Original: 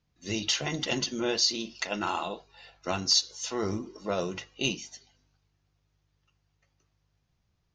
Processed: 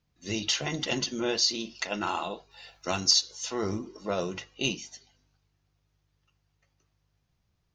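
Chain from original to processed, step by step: 2.51–3.11 high shelf 4900 Hz +11.5 dB

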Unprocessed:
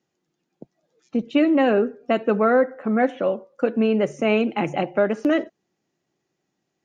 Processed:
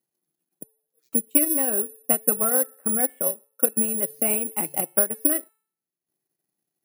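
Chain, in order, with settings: transient shaper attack +7 dB, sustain -10 dB; de-hum 439 Hz, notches 40; careless resampling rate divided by 4×, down none, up zero stuff; gain -11.5 dB

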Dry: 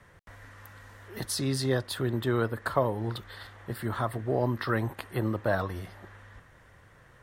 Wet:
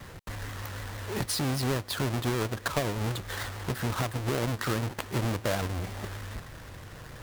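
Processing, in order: half-waves squared off; vibrato 6.5 Hz 99 cents; compressor 3:1, threshold -38 dBFS, peak gain reduction 15.5 dB; gain +7 dB

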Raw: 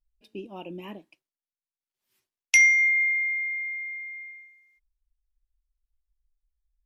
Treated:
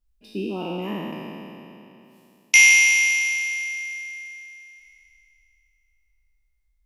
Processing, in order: spectral trails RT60 2.94 s; bell 220 Hz +6.5 dB 1.1 oct; gain +3 dB

